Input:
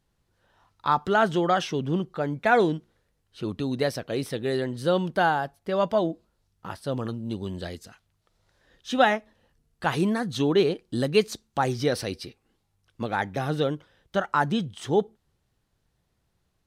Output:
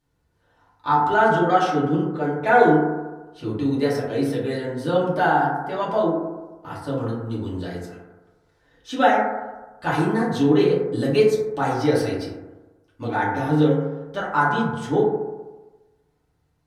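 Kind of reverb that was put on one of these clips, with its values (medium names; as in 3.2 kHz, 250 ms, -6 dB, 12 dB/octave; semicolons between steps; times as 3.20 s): FDN reverb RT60 1.2 s, low-frequency decay 0.9×, high-frequency decay 0.25×, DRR -8 dB; trim -5.5 dB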